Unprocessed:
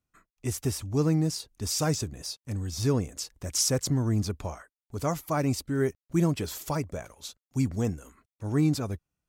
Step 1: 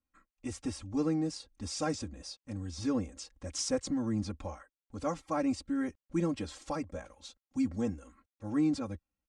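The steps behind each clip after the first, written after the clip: elliptic low-pass 9200 Hz, stop band 50 dB; high shelf 4000 Hz -8.5 dB; comb 3.7 ms, depth 100%; gain -6 dB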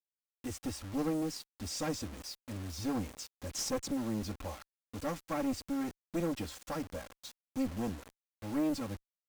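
bit-crush 8-bit; one-sided clip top -36 dBFS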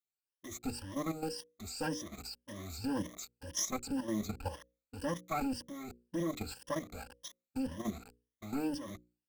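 moving spectral ripple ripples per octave 1.2, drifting +1.9 Hz, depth 19 dB; level quantiser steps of 11 dB; notches 60/120/180/240/300/360/420/480/540 Hz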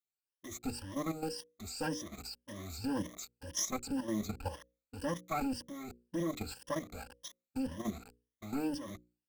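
nothing audible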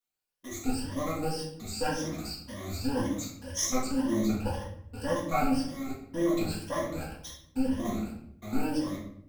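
shoebox room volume 140 m³, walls mixed, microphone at 1.8 m

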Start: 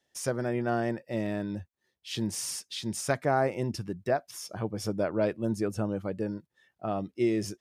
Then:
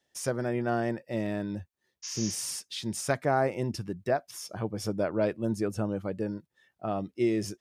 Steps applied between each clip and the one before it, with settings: spectral repair 2.06–2.34, 840–7100 Hz after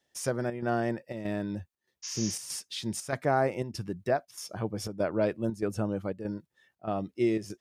chopper 1.6 Hz, depth 60%, duty 80%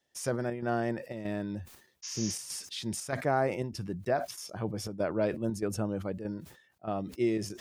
sustainer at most 100 dB/s; gain -2 dB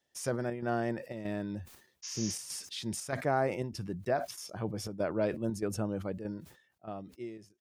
ending faded out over 1.40 s; gain -1.5 dB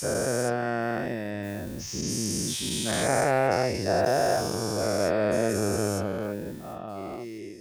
spectral dilation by 0.48 s

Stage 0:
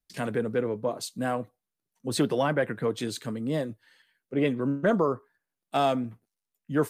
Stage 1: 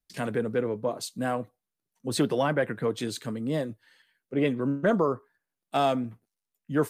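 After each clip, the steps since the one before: nothing audible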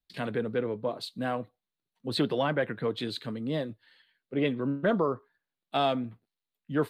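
resonant high shelf 5000 Hz -7.5 dB, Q 3; gain -2.5 dB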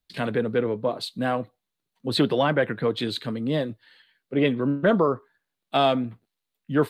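wow and flutter 22 cents; gain +6 dB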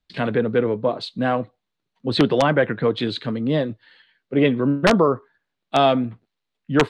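wrapped overs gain 10 dB; air absorption 110 m; gain +4.5 dB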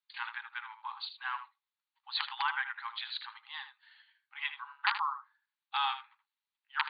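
brick-wall FIR band-pass 790–4800 Hz; echo 78 ms -11 dB; gain -8.5 dB

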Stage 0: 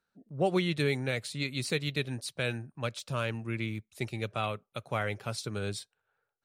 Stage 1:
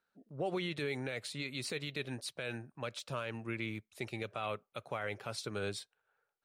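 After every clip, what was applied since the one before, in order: tone controls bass -8 dB, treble -5 dB; limiter -27 dBFS, peak gain reduction 9 dB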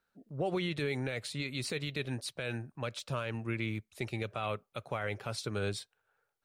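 low shelf 110 Hz +10.5 dB; gain +2 dB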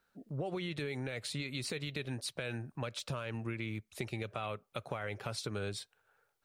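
compressor 5:1, threshold -40 dBFS, peak gain reduction 10.5 dB; gain +4.5 dB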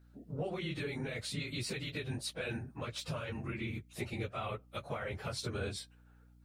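phase scrambler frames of 50 ms; hum 60 Hz, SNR 21 dB

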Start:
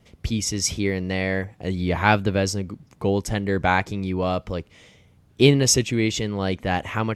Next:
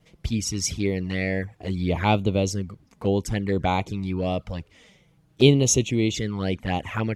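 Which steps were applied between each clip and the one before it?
envelope flanger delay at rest 6.7 ms, full sweep at -18.5 dBFS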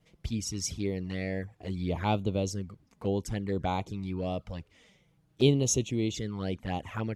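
dynamic EQ 2200 Hz, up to -5 dB, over -43 dBFS, Q 1.7; gain -7 dB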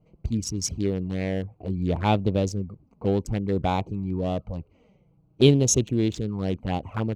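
Wiener smoothing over 25 samples; gain +6.5 dB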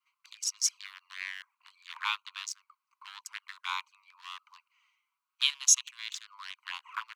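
steep high-pass 1000 Hz 96 dB/oct; gain +1.5 dB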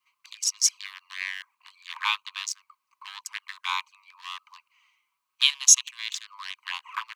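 notch 1400 Hz, Q 6.8; gain +6.5 dB

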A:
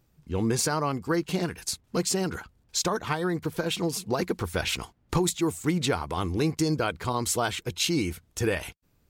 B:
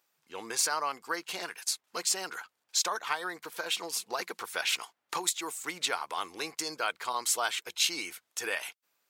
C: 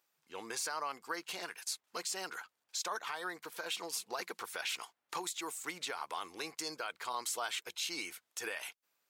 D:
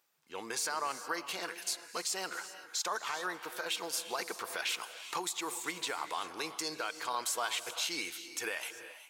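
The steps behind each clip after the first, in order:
HPF 880 Hz 12 dB/oct
limiter -23 dBFS, peak gain reduction 9 dB; gain -4 dB
non-linear reverb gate 0.42 s rising, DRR 10.5 dB; gain +3 dB

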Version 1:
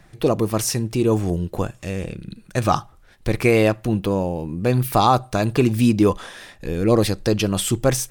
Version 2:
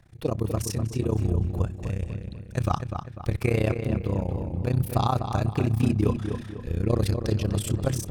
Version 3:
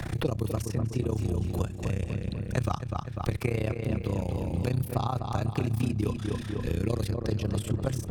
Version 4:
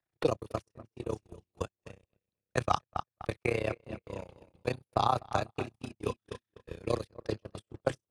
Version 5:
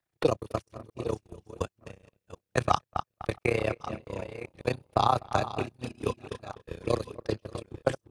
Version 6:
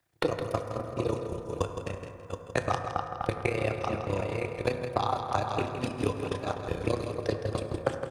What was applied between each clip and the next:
bell 78 Hz +15 dB 1.3 oct; AM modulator 31 Hz, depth 85%; darkening echo 0.248 s, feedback 43%, low-pass 3600 Hz, level -7 dB; gain -7 dB
three-band squash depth 100%; gain -4.5 dB
three-band isolator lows -13 dB, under 380 Hz, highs -17 dB, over 6900 Hz; gate -33 dBFS, range -55 dB; bell 10000 Hz +10.5 dB 0.4 oct; gain +6 dB
reverse delay 0.659 s, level -14 dB; gain +3.5 dB
compressor 6:1, threshold -34 dBFS, peak gain reduction 15.5 dB; feedback echo 0.164 s, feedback 30%, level -8.5 dB; on a send at -6 dB: reverb RT60 3.2 s, pre-delay 5 ms; on the sum: gain +8 dB

